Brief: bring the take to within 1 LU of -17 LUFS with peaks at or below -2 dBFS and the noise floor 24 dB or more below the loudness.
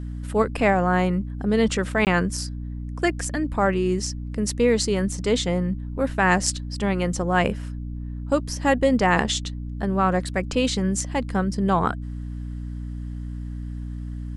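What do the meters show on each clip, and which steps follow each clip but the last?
dropouts 1; longest dropout 18 ms; hum 60 Hz; highest harmonic 300 Hz; hum level -29 dBFS; loudness -23.0 LUFS; peak level -4.5 dBFS; loudness target -17.0 LUFS
-> interpolate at 2.05 s, 18 ms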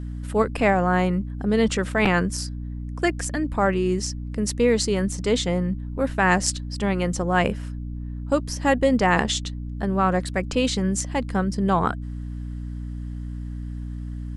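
dropouts 0; hum 60 Hz; highest harmonic 300 Hz; hum level -29 dBFS
-> de-hum 60 Hz, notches 5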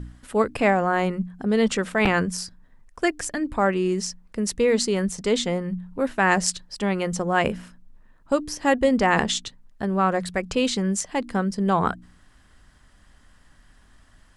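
hum not found; loudness -23.5 LUFS; peak level -5.0 dBFS; loudness target -17.0 LUFS
-> trim +6.5 dB; peak limiter -2 dBFS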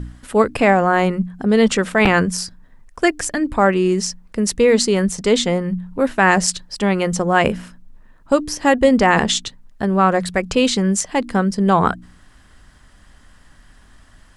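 loudness -17.5 LUFS; peak level -2.0 dBFS; noise floor -49 dBFS

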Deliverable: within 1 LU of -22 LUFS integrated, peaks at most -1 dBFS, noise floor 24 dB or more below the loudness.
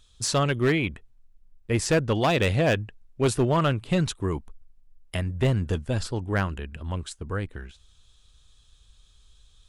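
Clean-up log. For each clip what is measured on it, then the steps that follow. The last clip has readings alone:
clipped samples 0.9%; clipping level -16.0 dBFS; loudness -26.0 LUFS; peak level -16.0 dBFS; loudness target -22.0 LUFS
-> clip repair -16 dBFS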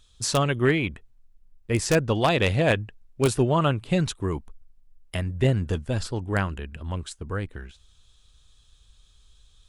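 clipped samples 0.0%; loudness -25.5 LUFS; peak level -7.0 dBFS; loudness target -22.0 LUFS
-> trim +3.5 dB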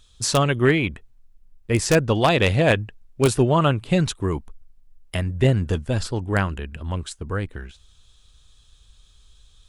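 loudness -22.0 LUFS; peak level -3.5 dBFS; noise floor -55 dBFS

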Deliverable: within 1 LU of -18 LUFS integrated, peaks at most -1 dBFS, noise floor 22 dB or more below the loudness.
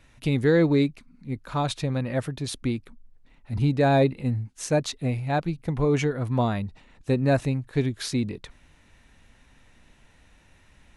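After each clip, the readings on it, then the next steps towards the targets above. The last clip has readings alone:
loudness -25.5 LUFS; peak level -10.0 dBFS; loudness target -18.0 LUFS
-> trim +7.5 dB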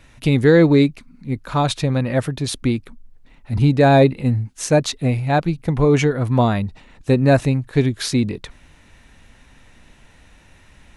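loudness -18.0 LUFS; peak level -2.5 dBFS; noise floor -51 dBFS

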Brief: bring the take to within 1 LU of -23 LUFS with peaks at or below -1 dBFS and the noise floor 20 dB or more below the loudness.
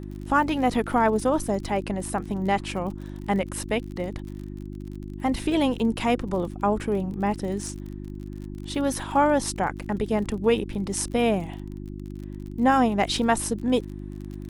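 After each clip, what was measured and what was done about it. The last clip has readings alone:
tick rate 44 per s; hum 50 Hz; highest harmonic 350 Hz; hum level -33 dBFS; loudness -25.5 LUFS; peak level -7.5 dBFS; loudness target -23.0 LUFS
-> de-click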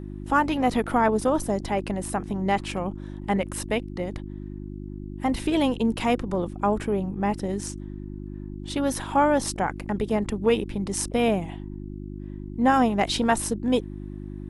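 tick rate 0.069 per s; hum 50 Hz; highest harmonic 350 Hz; hum level -33 dBFS
-> de-hum 50 Hz, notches 7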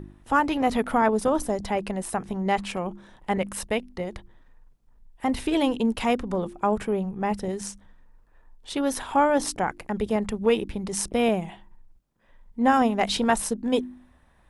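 hum not found; loudness -25.5 LUFS; peak level -8.0 dBFS; loudness target -23.0 LUFS
-> trim +2.5 dB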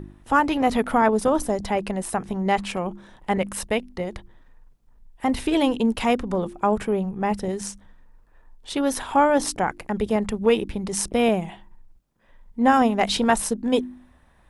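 loudness -23.0 LUFS; peak level -5.5 dBFS; noise floor -56 dBFS

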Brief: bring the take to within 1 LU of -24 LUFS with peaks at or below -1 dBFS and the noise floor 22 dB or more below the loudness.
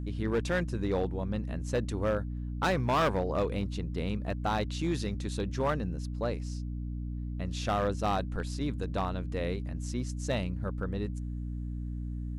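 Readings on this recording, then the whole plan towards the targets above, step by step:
clipped samples 1.2%; clipping level -22.5 dBFS; hum 60 Hz; highest harmonic 300 Hz; hum level -33 dBFS; loudness -33.0 LUFS; peak level -22.5 dBFS; loudness target -24.0 LUFS
-> clip repair -22.5 dBFS; de-hum 60 Hz, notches 5; trim +9 dB

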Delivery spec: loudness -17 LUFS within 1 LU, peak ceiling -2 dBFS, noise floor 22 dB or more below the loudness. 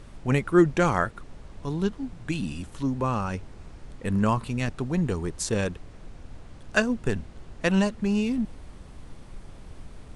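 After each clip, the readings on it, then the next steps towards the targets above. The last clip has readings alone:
noise floor -46 dBFS; noise floor target -49 dBFS; loudness -27.0 LUFS; peak level -7.5 dBFS; loudness target -17.0 LUFS
-> noise print and reduce 6 dB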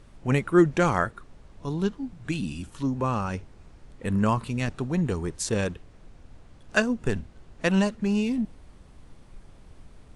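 noise floor -52 dBFS; loudness -27.0 LUFS; peak level -7.5 dBFS; loudness target -17.0 LUFS
-> trim +10 dB; peak limiter -2 dBFS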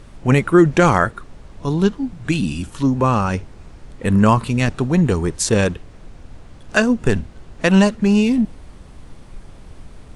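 loudness -17.5 LUFS; peak level -2.0 dBFS; noise floor -42 dBFS

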